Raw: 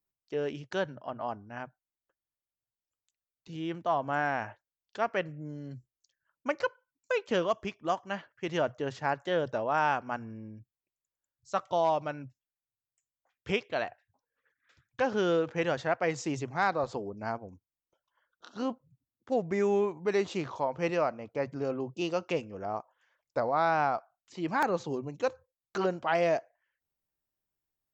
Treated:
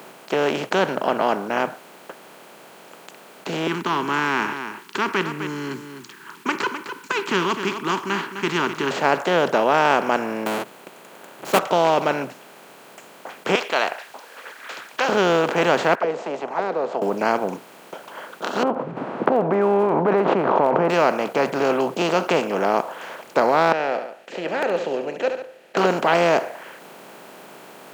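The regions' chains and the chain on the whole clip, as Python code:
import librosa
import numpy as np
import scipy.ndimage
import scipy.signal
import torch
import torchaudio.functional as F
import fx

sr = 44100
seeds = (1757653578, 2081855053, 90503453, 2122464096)

y = fx.chain(x, sr, fx.ellip_bandstop(low_hz=380.0, high_hz=980.0, order=3, stop_db=40),
    fx.echo_single(ms=256, db=-22.0), at=(3.67, 8.91))
y = fx.chain(y, sr, fx.halfwave_hold(),
    fx.peak_eq(hz=5200.0, db=-6.0, octaves=0.36), at=(10.46, 11.59))
y = fx.chain(y, sr, fx.highpass(hz=1100.0, slope=12),
    fx.peak_eq(hz=4700.0, db=7.5, octaves=1.4), at=(13.55, 15.09))
y = fx.chain(y, sr, fx.steep_highpass(hz=150.0, slope=36),
    fx.auto_wah(base_hz=460.0, top_hz=1700.0, q=9.1, full_db=-26.5, direction='down'), at=(15.95, 17.02))
y = fx.chain(y, sr, fx.lowpass(hz=1100.0, slope=24),
    fx.pre_swell(db_per_s=43.0), at=(18.63, 20.9))
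y = fx.chain(y, sr, fx.vowel_filter(vowel='e'),
    fx.echo_feedback(ms=71, feedback_pct=24, wet_db=-18), at=(23.72, 25.77))
y = fx.bin_compress(y, sr, power=0.4)
y = scipy.signal.sosfilt(scipy.signal.butter(4, 180.0, 'highpass', fs=sr, output='sos'), y)
y = F.gain(torch.from_numpy(y), 5.0).numpy()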